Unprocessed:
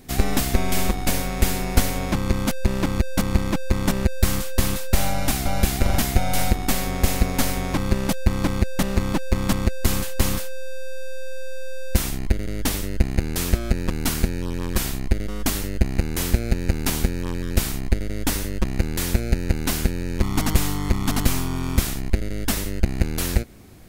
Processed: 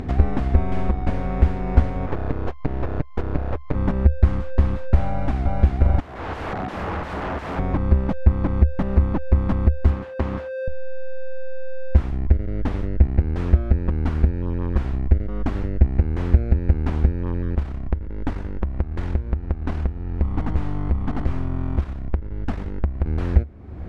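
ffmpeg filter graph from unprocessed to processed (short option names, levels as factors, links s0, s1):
-filter_complex "[0:a]asettb=1/sr,asplit=3[s0][s1][s2];[s0]atrim=end=2.064[s3];[s1]atrim=start=2.06:end=3.75,asetpts=PTS-STARTPTS,afade=t=in:d=0.004:c=qsin,afade=t=out:st=1.686:d=0.004:c=qsin,highpass=f=86:p=1,aeval=exprs='abs(val(0))':c=same[s4];[s2]atrim=start=3.746[s5];[s3][s4]acrossfade=d=0.004:c1=hsin:c2=qsin[s6];[s6][s5]acrossfade=d=0.004:c1=qsin:c2=hsin,asettb=1/sr,asplit=3[s7][s8][s9];[s7]atrim=end=6.004[s10];[s8]atrim=start=6:end=7.59,asetpts=PTS-STARTPTS,afade=t=in:d=0.004:c=qsin,afade=t=out:st=1.586:d=0.004:c=qsin,highpass=f=160:w=0.5412,highpass=f=160:w=1.3066,equalizer=f=5400:w=0.49:g=-12,aeval=exprs='(mod(23.7*val(0)+1,2)-1)/23.7':c=same[s11];[s9]atrim=start=7.586[s12];[s10][s11]acrossfade=d=0.004:c1=hsin:c2=qsin[s13];[s13][s12]acrossfade=d=0.004:c1=qsin:c2=hsin,asettb=1/sr,asplit=3[s14][s15][s16];[s14]atrim=end=9.904[s17];[s15]atrim=start=9.9:end=10.68,asetpts=PTS-STARTPTS,afade=t=in:d=0.004:c=qsin,afade=t=out:st=0.776:d=0.004:c=qsin,highpass=f=200:p=1,highshelf=f=6100:g=-10[s18];[s16]atrim=start=10.676[s19];[s17][s18]acrossfade=d=0.004:c1=hsin:c2=qsin[s20];[s20][s19]acrossfade=d=0.004:c1=qsin:c2=hsin,asettb=1/sr,asplit=3[s21][s22][s23];[s21]atrim=end=17.554[s24];[s22]atrim=start=17.55:end=23.06,asetpts=PTS-STARTPTS,afade=t=in:d=0.004:c=qsin,afade=t=out:st=5.506:d=0.004:c=qsin,aeval=exprs='(tanh(7.94*val(0)+0.8)-tanh(0.8))/7.94':c=same,aecho=1:1:115:0.112,atrim=end_sample=242991[s25];[s23]atrim=start=23.056[s26];[s24][s25]acrossfade=d=0.004:c1=hsin:c2=qsin[s27];[s27][s26]acrossfade=d=0.004:c1=qsin:c2=hsin,lowpass=1300,equalizer=f=72:w=3:g=13,acompressor=mode=upward:threshold=0.178:ratio=2.5,volume=0.841"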